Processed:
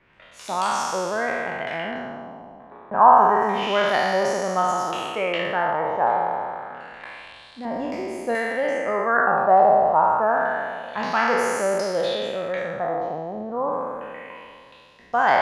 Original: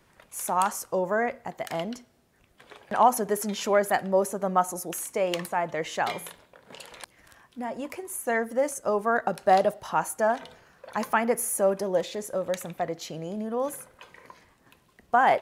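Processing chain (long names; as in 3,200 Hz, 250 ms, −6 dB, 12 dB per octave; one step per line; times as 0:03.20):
peak hold with a decay on every bin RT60 2.40 s
0:07.65–0:08.35: tilt shelving filter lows +6.5 dB, about 1,100 Hz
auto-filter low-pass sine 0.28 Hz 940–5,300 Hz
level −2.5 dB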